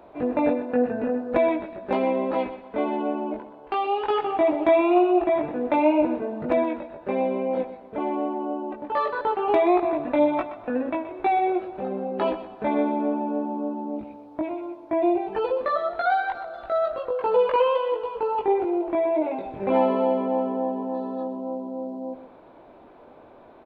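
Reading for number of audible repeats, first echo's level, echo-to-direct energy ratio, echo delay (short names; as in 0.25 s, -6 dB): 2, -12.5 dB, -12.0 dB, 0.124 s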